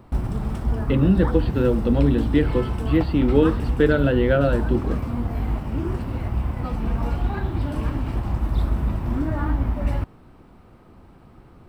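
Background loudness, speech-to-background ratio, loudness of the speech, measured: -26.0 LUFS, 5.0 dB, -21.0 LUFS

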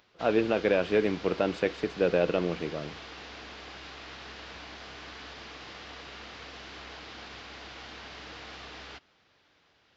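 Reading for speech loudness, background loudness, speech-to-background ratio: -28.0 LUFS, -43.5 LUFS, 15.5 dB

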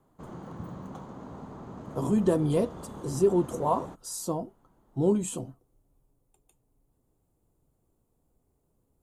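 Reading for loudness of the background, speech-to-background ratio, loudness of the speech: -43.0 LUFS, 15.0 dB, -28.0 LUFS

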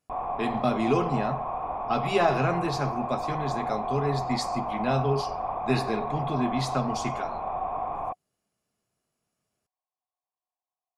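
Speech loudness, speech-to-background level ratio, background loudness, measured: -29.0 LUFS, 3.0 dB, -32.0 LUFS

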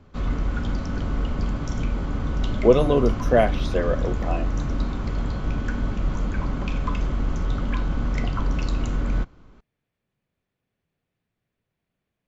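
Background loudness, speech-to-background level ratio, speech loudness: -27.5 LUFS, 5.0 dB, -22.5 LUFS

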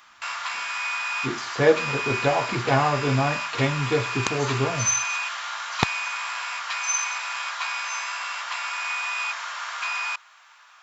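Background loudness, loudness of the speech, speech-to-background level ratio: -27.5 LUFS, -25.0 LUFS, 2.5 dB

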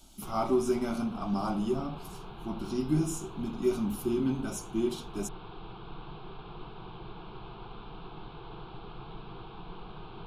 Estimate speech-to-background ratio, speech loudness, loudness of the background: 14.0 dB, -32.0 LUFS, -46.0 LUFS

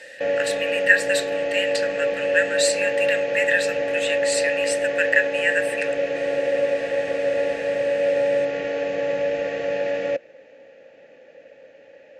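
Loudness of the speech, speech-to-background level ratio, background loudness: -23.5 LUFS, 0.0 dB, -23.5 LUFS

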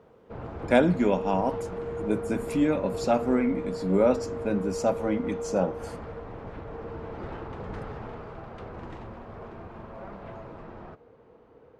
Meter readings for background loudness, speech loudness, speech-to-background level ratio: -36.5 LUFS, -26.5 LUFS, 10.0 dB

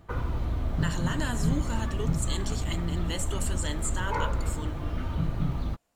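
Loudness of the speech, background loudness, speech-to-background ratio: -35.0 LUFS, -31.5 LUFS, -3.5 dB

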